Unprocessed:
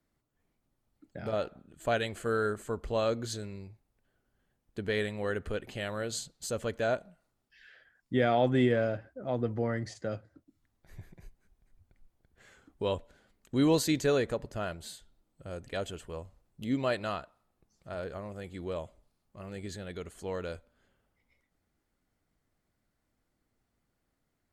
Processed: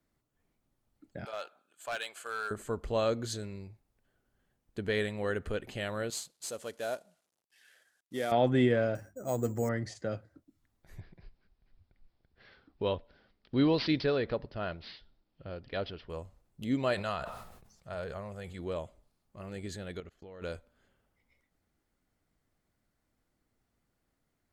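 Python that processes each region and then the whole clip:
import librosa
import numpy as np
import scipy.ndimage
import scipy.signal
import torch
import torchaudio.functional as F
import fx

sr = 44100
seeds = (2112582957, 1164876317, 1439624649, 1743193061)

y = fx.chain(x, sr, fx.highpass(hz=980.0, slope=12),
    fx.notch(hz=1900.0, q=7.0),
    fx.clip_hard(threshold_db=-30.0), at=(1.25, 2.51))
y = fx.chain(y, sr, fx.cvsd(bps=64000),
    fx.highpass(hz=750.0, slope=6),
    fx.peak_eq(hz=1800.0, db=-6.5, octaves=2.0), at=(6.1, 8.32))
y = fx.chain(y, sr, fx.hum_notches(base_hz=50, count=7),
    fx.resample_bad(factor=6, down='filtered', up='hold'), at=(8.95, 9.69))
y = fx.chain(y, sr, fx.tremolo(hz=2.7, depth=0.31),
    fx.resample_bad(factor=4, down='none', up='filtered'), at=(11.0, 16.1))
y = fx.chain(y, sr, fx.peak_eq(hz=300.0, db=-11.0, octaves=0.53),
    fx.sustainer(db_per_s=49.0), at=(16.94, 18.59))
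y = fx.chain(y, sr, fx.moving_average(points=5),
    fx.notch(hz=980.0, q=10.0),
    fx.level_steps(step_db=24), at=(20.0, 20.42))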